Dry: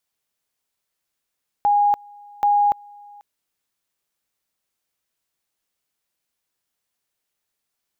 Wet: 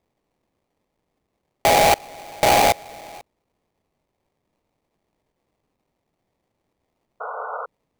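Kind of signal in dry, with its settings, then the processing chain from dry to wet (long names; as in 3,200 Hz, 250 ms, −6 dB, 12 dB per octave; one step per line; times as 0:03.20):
tone at two levels in turn 821 Hz −13.5 dBFS, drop 27 dB, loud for 0.29 s, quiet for 0.49 s, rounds 2
in parallel at −2.5 dB: downward compressor, threshold −26 dBFS
on the sum: sample-rate reduction 1,500 Hz, jitter 20%
sound drawn into the spectrogram noise, 0:07.20–0:07.66, 430–1,500 Hz −30 dBFS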